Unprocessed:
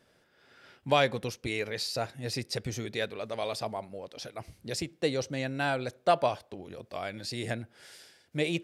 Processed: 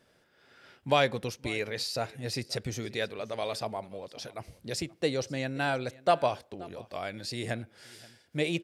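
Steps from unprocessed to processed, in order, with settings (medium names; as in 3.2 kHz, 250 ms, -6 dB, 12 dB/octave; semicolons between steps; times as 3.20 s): delay 529 ms -22 dB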